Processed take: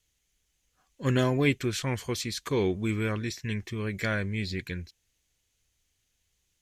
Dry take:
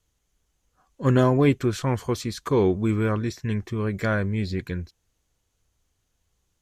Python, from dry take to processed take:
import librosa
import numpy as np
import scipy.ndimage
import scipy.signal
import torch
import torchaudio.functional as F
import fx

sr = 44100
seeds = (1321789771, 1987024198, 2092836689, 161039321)

y = fx.high_shelf_res(x, sr, hz=1600.0, db=7.5, q=1.5)
y = F.gain(torch.from_numpy(y), -6.0).numpy()